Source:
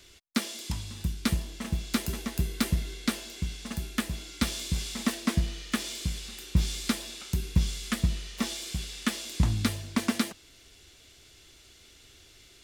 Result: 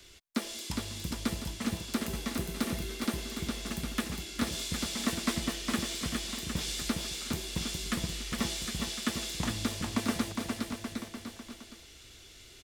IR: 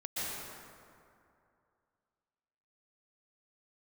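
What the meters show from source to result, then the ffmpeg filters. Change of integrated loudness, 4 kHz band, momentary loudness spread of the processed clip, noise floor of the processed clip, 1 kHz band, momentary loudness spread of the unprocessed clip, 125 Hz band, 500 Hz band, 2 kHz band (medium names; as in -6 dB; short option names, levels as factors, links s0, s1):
-3.0 dB, 0.0 dB, 10 LU, -53 dBFS, 0.0 dB, 7 LU, -7.5 dB, +1.5 dB, -1.0 dB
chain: -filter_complex "[0:a]acrossover=split=260|1100[s0][s1][s2];[s0]acompressor=threshold=0.0141:ratio=6[s3];[s2]alimiter=limit=0.0668:level=0:latency=1:release=218[s4];[s3][s1][s4]amix=inputs=3:normalize=0,aecho=1:1:410|758.5|1055|1307|1521:0.631|0.398|0.251|0.158|0.1"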